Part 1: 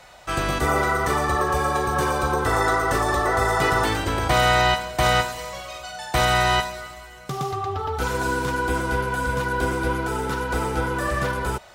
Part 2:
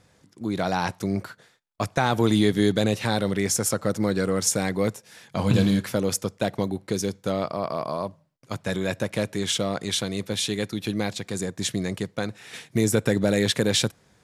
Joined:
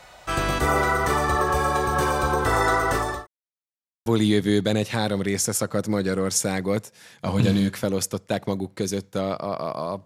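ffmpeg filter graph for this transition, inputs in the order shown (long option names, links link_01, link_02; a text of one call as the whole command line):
ffmpeg -i cue0.wav -i cue1.wav -filter_complex "[0:a]apad=whole_dur=10.05,atrim=end=10.05,asplit=2[link_01][link_02];[link_01]atrim=end=3.27,asetpts=PTS-STARTPTS,afade=type=out:start_time=2.77:duration=0.5:curve=qsin[link_03];[link_02]atrim=start=3.27:end=4.06,asetpts=PTS-STARTPTS,volume=0[link_04];[1:a]atrim=start=2.17:end=8.16,asetpts=PTS-STARTPTS,afade=type=in:duration=0.004:curve=hsin[link_05];[link_03][link_04][link_05]concat=n=3:v=0:a=1" out.wav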